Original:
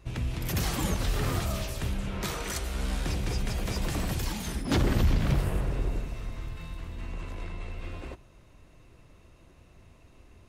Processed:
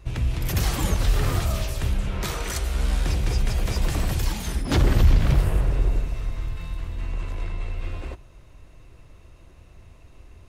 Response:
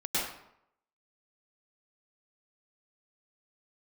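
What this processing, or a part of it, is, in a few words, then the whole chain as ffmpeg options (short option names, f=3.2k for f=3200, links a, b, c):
low shelf boost with a cut just above: -af "lowshelf=f=100:g=6.5,equalizer=f=210:t=o:w=1:g=-4,volume=3.5dB"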